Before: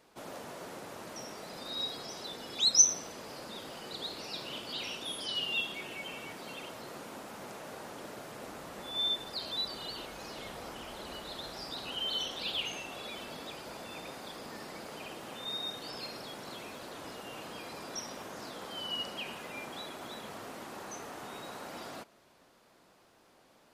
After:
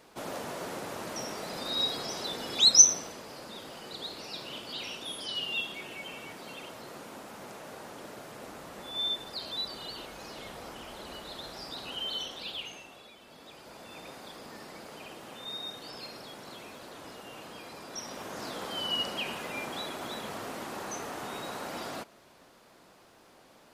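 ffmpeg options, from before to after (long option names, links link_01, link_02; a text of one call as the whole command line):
ffmpeg -i in.wav -af "volume=24dB,afade=type=out:start_time=2.63:duration=0.61:silence=0.473151,afade=type=out:start_time=11.98:duration=1.2:silence=0.251189,afade=type=in:start_time=13.18:duration=0.9:silence=0.298538,afade=type=in:start_time=17.89:duration=0.62:silence=0.446684" out.wav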